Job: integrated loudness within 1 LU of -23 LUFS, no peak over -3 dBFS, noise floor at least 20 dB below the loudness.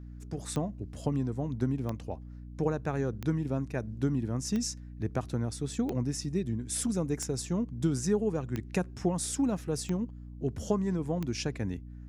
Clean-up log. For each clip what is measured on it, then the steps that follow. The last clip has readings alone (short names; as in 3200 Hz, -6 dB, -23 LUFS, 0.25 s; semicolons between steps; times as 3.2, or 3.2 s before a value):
clicks 9; hum 60 Hz; harmonics up to 300 Hz; hum level -42 dBFS; loudness -32.5 LUFS; peak -15.5 dBFS; loudness target -23.0 LUFS
-> de-click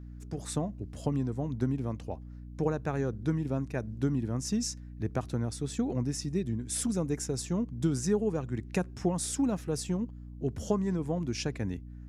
clicks 0; hum 60 Hz; harmonics up to 300 Hz; hum level -42 dBFS
-> notches 60/120/180/240/300 Hz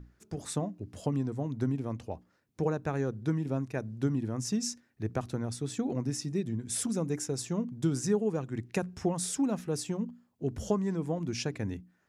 hum none; loudness -33.0 LUFS; peak -15.5 dBFS; loudness target -23.0 LUFS
-> gain +10 dB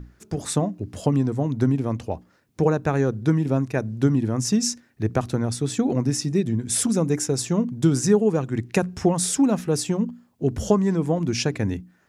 loudness -23.0 LUFS; peak -5.5 dBFS; noise floor -61 dBFS